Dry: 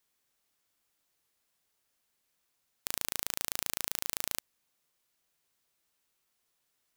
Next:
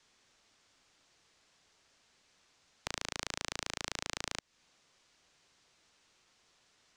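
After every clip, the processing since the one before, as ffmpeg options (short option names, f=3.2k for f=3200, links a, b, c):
-filter_complex "[0:a]lowpass=f=6.8k:w=0.5412,lowpass=f=6.8k:w=1.3066,acrossover=split=320|1300[a][b][c];[a]acompressor=threshold=-59dB:ratio=4[d];[b]acompressor=threshold=-58dB:ratio=4[e];[c]acompressor=threshold=-45dB:ratio=4[f];[d][e][f]amix=inputs=3:normalize=0,acrossover=split=700|2400[g][h][i];[i]alimiter=level_in=9.5dB:limit=-24dB:level=0:latency=1,volume=-9.5dB[j];[g][h][j]amix=inputs=3:normalize=0,volume=13dB"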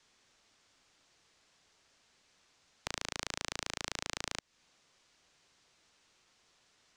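-af anull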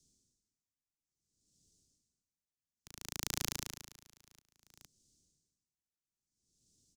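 -filter_complex "[0:a]acrossover=split=310|5800[a][b][c];[b]acrusher=bits=3:mix=0:aa=0.000001[d];[a][d][c]amix=inputs=3:normalize=0,aecho=1:1:462:0.15,aeval=exprs='val(0)*pow(10,-29*(0.5-0.5*cos(2*PI*0.59*n/s))/20)':c=same,volume=5.5dB"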